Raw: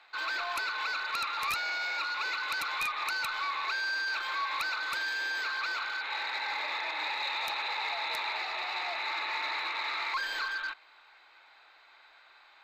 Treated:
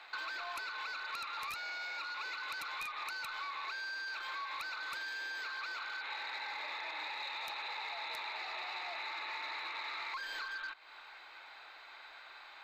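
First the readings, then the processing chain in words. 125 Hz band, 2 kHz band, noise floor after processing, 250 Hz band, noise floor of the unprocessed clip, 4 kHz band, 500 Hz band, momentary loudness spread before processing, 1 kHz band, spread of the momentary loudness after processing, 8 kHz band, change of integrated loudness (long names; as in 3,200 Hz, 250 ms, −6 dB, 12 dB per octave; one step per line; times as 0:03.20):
can't be measured, −8.0 dB, −54 dBFS, −8.0 dB, −59 dBFS, −8.0 dB, −7.5 dB, 2 LU, −8.0 dB, 12 LU, −8.5 dB, −8.0 dB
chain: downward compressor, threshold −45 dBFS, peak gain reduction 15.5 dB
level +5 dB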